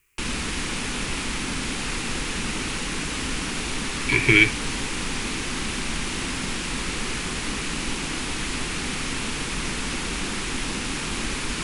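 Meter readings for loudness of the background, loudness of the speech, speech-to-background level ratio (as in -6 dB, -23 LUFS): -27.5 LUFS, -18.5 LUFS, 9.0 dB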